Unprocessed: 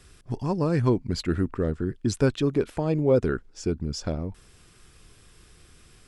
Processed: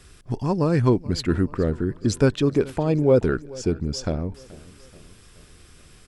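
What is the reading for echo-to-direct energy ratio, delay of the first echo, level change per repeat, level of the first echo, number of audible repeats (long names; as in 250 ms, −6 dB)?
−19.5 dB, 429 ms, −5.5 dB, −21.0 dB, 3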